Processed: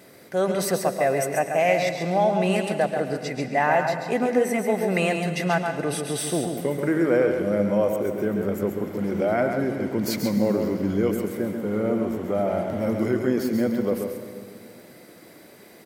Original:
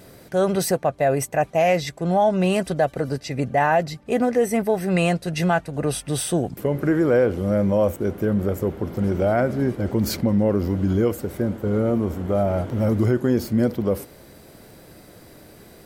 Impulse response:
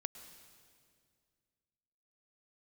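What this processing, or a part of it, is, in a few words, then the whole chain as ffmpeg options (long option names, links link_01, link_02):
PA in a hall: -filter_complex "[0:a]highpass=180,equalizer=frequency=2100:width_type=o:width=0.36:gain=6,aecho=1:1:136:0.473[link_01];[1:a]atrim=start_sample=2205[link_02];[link_01][link_02]afir=irnorm=-1:irlink=0"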